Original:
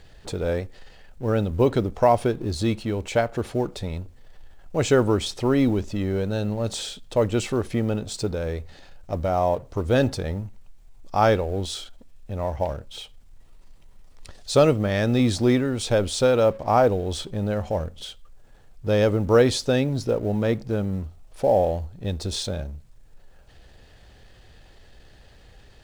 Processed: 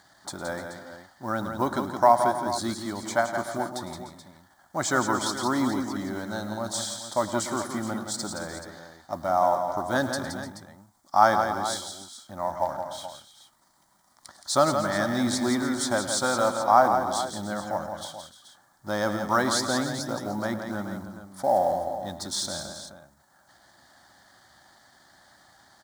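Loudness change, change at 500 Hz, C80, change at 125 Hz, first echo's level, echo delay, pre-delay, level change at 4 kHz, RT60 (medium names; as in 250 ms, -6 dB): -3.0 dB, -6.0 dB, no reverb, -12.5 dB, -15.5 dB, 107 ms, no reverb, -1.0 dB, no reverb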